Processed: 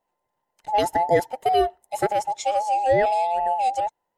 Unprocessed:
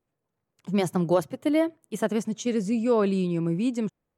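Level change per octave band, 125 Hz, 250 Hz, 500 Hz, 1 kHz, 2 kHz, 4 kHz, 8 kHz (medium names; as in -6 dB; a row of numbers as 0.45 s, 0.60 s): -8.0 dB, -11.5 dB, +3.5 dB, +16.0 dB, +6.0 dB, +5.0 dB, +2.5 dB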